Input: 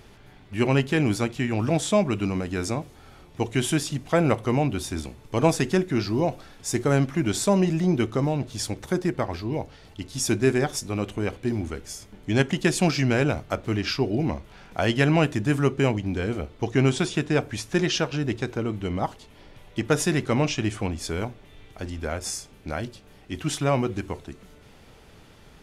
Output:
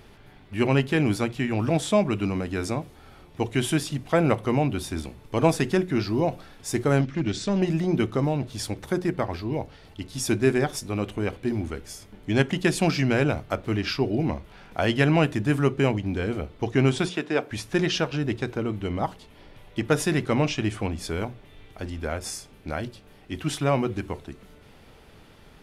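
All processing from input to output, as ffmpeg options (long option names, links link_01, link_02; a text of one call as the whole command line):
ffmpeg -i in.wav -filter_complex "[0:a]asettb=1/sr,asplit=3[link_01][link_02][link_03];[link_01]atrim=end=7.014[link_04];[link_02]atrim=start=7.01:end=7.62,asetpts=PTS-STARTPTS,afade=type=in:duration=0.004:curve=qsin,afade=type=out:start_time=0.606:duration=0.004:curve=qsin,equalizer=frequency=880:width_type=o:width=1.2:gain=-11.5,asoftclip=type=hard:threshold=-19dB,lowpass=frequency=6500:width=0.5412,lowpass=frequency=6500:width=1.3066[link_05];[link_03]atrim=start=7.616[link_06];[link_04][link_05]acrossfade=duration=0.004:curve1=hsin:curve2=qsin[link_07];[link_07][link_06]acrossfade=duration=0.004:curve1=qsin:curve2=hsin,asettb=1/sr,asplit=3[link_08][link_09][link_10];[link_08]atrim=end=17.094[link_11];[link_09]atrim=start=17.09:end=17.51,asetpts=PTS-STARTPTS,afade=type=in:duration=0.004:curve=qsin,afade=type=out:start_time=0.416:duration=0.004:curve=qsin,highpass=290,equalizer=frequency=10000:width_type=o:width=1.2:gain=-6[link_12];[link_10]atrim=start=17.506[link_13];[link_11][link_12]acrossfade=duration=0.004:curve1=hsin:curve2=qsin[link_14];[link_14][link_13]acrossfade=duration=0.004:curve1=qsin:curve2=hsin,equalizer=frequency=6700:width_type=o:width=0.73:gain=-5,bandreject=frequency=60:width_type=h:width=6,bandreject=frequency=120:width_type=h:width=6,bandreject=frequency=180:width_type=h:width=6" out.wav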